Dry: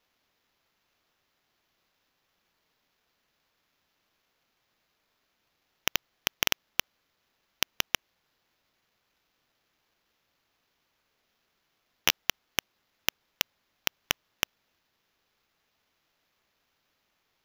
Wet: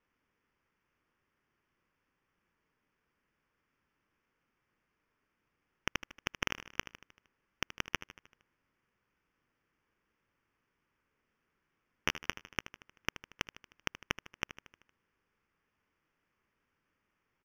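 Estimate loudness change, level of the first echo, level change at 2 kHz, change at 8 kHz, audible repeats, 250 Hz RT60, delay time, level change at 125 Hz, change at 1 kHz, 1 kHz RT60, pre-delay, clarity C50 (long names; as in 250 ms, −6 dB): −8.5 dB, −14.0 dB, −5.0 dB, −13.5 dB, 5, no reverb audible, 77 ms, 0.0 dB, −4.0 dB, no reverb audible, no reverb audible, no reverb audible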